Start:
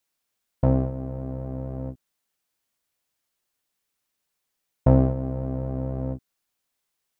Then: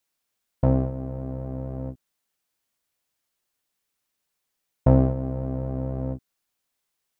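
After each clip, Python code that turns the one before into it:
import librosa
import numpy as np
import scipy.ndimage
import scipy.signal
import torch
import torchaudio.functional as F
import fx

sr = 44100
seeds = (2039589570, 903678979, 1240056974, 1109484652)

y = x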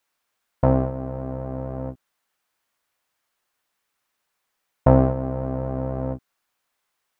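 y = fx.peak_eq(x, sr, hz=1200.0, db=9.5, octaves=2.5)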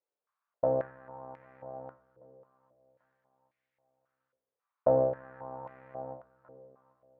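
y = fx.echo_feedback(x, sr, ms=790, feedback_pct=44, wet_db=-21)
y = fx.room_shoebox(y, sr, seeds[0], volume_m3=69.0, walls='mixed', distance_m=0.33)
y = fx.filter_held_bandpass(y, sr, hz=3.7, low_hz=480.0, high_hz=2100.0)
y = y * 10.0 ** (-1.5 / 20.0)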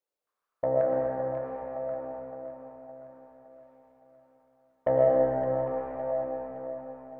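y = 10.0 ** (-15.0 / 20.0) * np.tanh(x / 10.0 ** (-15.0 / 20.0))
y = fx.echo_feedback(y, sr, ms=564, feedback_pct=51, wet_db=-10)
y = fx.rev_freeverb(y, sr, rt60_s=3.3, hf_ratio=0.6, predelay_ms=70, drr_db=-3.0)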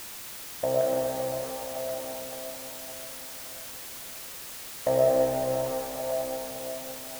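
y = fx.dmg_noise_colour(x, sr, seeds[1], colour='white', level_db=-41.0)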